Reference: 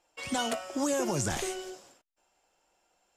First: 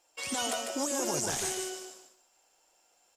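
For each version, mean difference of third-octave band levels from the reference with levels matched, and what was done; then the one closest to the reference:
5.5 dB: bass and treble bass −8 dB, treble +8 dB
brickwall limiter −22.5 dBFS, peak gain reduction 9 dB
on a send: repeating echo 149 ms, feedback 25%, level −5 dB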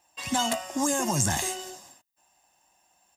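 3.5 dB: high-pass filter 64 Hz
high-shelf EQ 10,000 Hz +12 dB
comb filter 1.1 ms, depth 71%
level +2.5 dB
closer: second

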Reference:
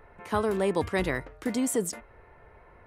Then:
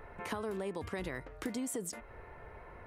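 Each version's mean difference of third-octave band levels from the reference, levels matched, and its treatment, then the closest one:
6.0 dB: brickwall limiter −19.5 dBFS, peak gain reduction 6.5 dB
downward compressor 6 to 1, threshold −39 dBFS, peak gain reduction 14 dB
level +3 dB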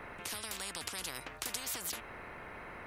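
15.0 dB: downward compressor, threshold −27 dBFS, peak gain reduction 6.5 dB
every bin compressed towards the loudest bin 10 to 1
level +4 dB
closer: first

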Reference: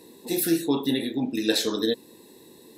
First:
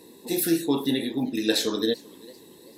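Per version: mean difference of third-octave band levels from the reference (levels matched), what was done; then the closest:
1.0 dB: feedback echo with a swinging delay time 390 ms, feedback 38%, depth 148 cents, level −23.5 dB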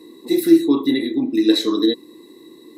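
7.5 dB: hollow resonant body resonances 320/1,100/2,000/3,900 Hz, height 17 dB, ringing for 35 ms
level −4.5 dB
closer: first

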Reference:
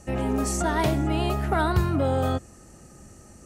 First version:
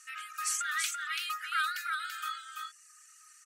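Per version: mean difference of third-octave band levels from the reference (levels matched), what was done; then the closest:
23.0 dB: reverb reduction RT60 1.1 s
linear-phase brick-wall high-pass 1,200 Hz
single-tap delay 336 ms −4 dB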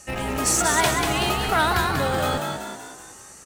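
9.0 dB: tilt shelving filter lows −9.5 dB, about 710 Hz
in parallel at −7 dB: comparator with hysteresis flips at −24 dBFS
on the sum: echo with shifted repeats 190 ms, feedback 49%, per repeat +59 Hz, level −4.5 dB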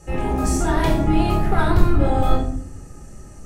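3.5 dB: sub-octave generator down 2 octaves, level +1 dB
in parallel at −5 dB: gain into a clipping stage and back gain 22.5 dB
on the sum: rectangular room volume 780 cubic metres, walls furnished, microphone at 4 metres
level −5.5 dB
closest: third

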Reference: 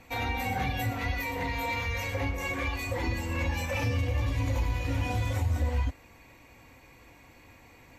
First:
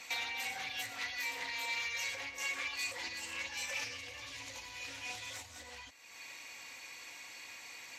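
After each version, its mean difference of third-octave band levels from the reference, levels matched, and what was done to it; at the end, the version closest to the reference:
10.0 dB: downward compressor 3 to 1, threshold −44 dBFS, peak gain reduction 15 dB
resonant band-pass 5,500 Hz, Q 1
highs frequency-modulated by the lows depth 0.22 ms
level +15.5 dB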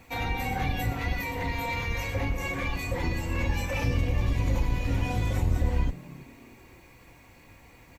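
2.0 dB: sub-octave generator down 1 octave, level 0 dB
background noise white −70 dBFS
echo with shifted repeats 319 ms, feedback 40%, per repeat +100 Hz, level −21 dB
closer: second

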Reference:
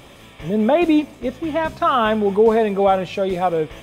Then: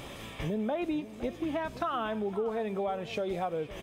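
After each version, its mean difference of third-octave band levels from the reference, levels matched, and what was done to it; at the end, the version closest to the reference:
5.0 dB: downward compressor 6 to 1, threshold −31 dBFS, peak gain reduction 19.5 dB
slap from a distant wall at 88 metres, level −15 dB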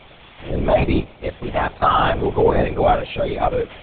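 7.5 dB: low-shelf EQ 270 Hz −11 dB
linear-prediction vocoder at 8 kHz whisper
level +2 dB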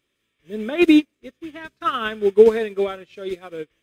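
10.5 dB: drawn EQ curve 190 Hz 0 dB, 380 Hz +8 dB, 790 Hz −8 dB, 1,500 Hz +9 dB
expander for the loud parts 2.5 to 1, over −30 dBFS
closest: first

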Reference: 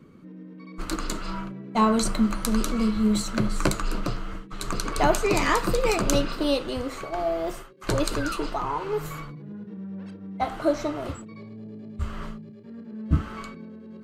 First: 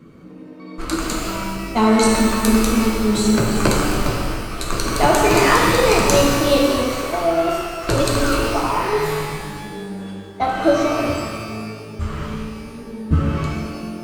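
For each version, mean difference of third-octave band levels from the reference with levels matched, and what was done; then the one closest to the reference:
7.0 dB: reverb with rising layers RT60 1.7 s, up +12 semitones, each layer −8 dB, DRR −1.5 dB
level +4.5 dB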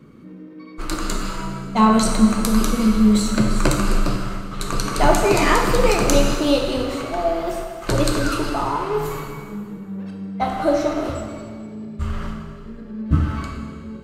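3.5 dB: dense smooth reverb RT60 1.9 s, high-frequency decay 0.9×, DRR 1.5 dB
level +3.5 dB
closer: second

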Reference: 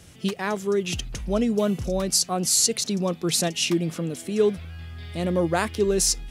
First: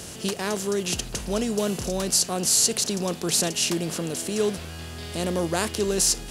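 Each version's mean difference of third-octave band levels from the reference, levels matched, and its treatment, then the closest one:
8.0 dB: compressor on every frequency bin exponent 0.6
high-shelf EQ 4,700 Hz +5.5 dB
level −5.5 dB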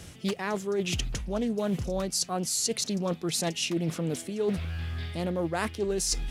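3.5 dB: reversed playback
downward compressor 6 to 1, threshold −31 dBFS, peak gain reduction 15 dB
reversed playback
highs frequency-modulated by the lows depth 0.2 ms
level +4.5 dB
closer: second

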